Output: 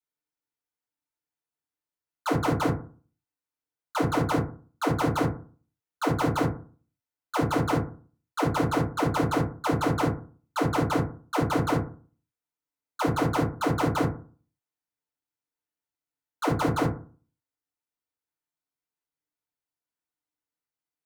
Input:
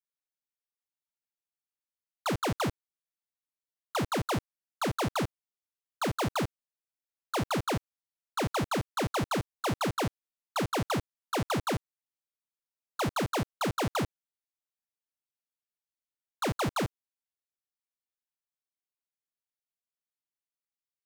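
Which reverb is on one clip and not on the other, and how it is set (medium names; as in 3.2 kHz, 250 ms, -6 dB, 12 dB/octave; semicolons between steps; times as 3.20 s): FDN reverb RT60 0.4 s, low-frequency decay 1.2×, high-frequency decay 0.3×, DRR -6 dB; trim -3.5 dB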